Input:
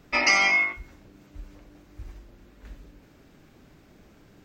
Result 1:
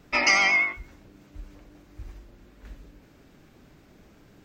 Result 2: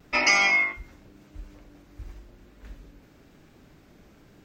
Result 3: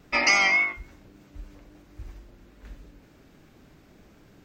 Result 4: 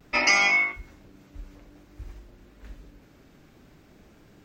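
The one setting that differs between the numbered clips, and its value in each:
vibrato, rate: 8.2, 0.94, 3.6, 0.54 Hz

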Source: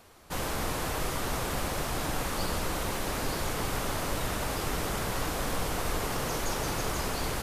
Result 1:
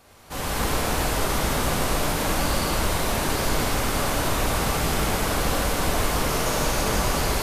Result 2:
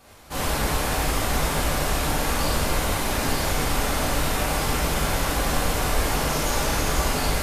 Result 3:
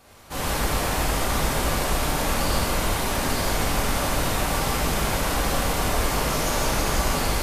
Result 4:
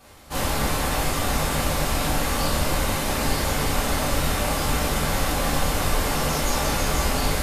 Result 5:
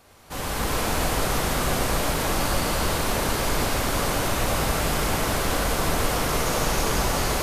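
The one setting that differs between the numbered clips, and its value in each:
non-linear reverb, gate: 350, 130, 200, 80, 530 ms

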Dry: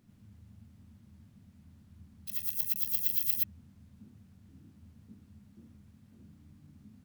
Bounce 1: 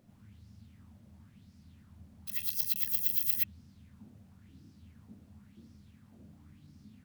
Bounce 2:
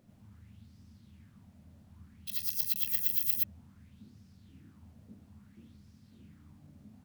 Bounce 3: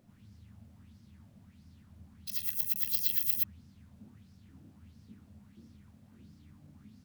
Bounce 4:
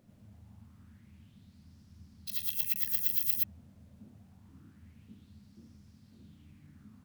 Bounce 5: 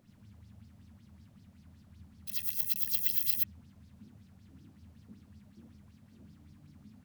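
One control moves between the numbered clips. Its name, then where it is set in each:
LFO bell, rate: 0.96, 0.59, 1.5, 0.26, 5.3 Hz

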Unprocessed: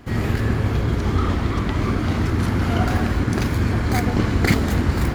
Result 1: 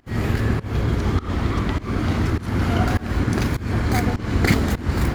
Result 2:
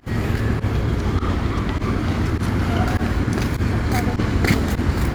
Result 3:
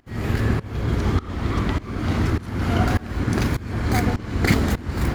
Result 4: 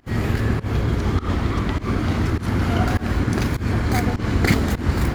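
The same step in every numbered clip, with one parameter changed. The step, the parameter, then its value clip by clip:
pump, release: 260, 63, 490, 161 ms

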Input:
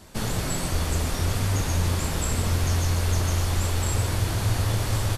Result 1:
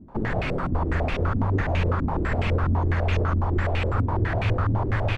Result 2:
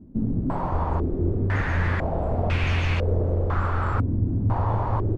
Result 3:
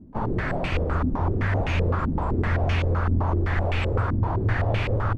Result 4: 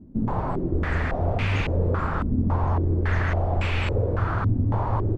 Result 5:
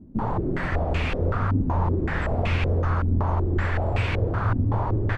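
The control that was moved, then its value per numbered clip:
stepped low-pass, rate: 12, 2, 7.8, 3.6, 5.3 Hz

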